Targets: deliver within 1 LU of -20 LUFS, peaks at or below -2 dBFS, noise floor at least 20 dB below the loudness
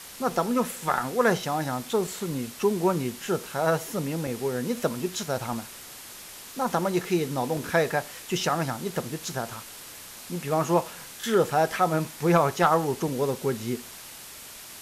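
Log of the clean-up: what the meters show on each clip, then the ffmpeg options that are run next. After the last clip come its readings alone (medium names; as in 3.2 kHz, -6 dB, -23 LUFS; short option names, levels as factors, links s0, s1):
noise floor -44 dBFS; noise floor target -47 dBFS; loudness -27.0 LUFS; peak level -10.0 dBFS; loudness target -20.0 LUFS
-> -af "afftdn=nr=6:nf=-44"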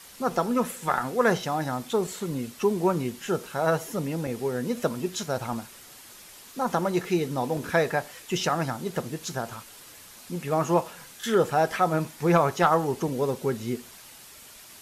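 noise floor -48 dBFS; loudness -27.0 LUFS; peak level -10.0 dBFS; loudness target -20.0 LUFS
-> -af "volume=2.24"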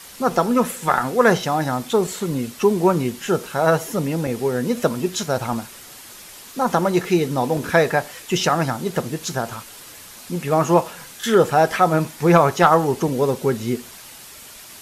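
loudness -20.0 LUFS; peak level -3.0 dBFS; noise floor -41 dBFS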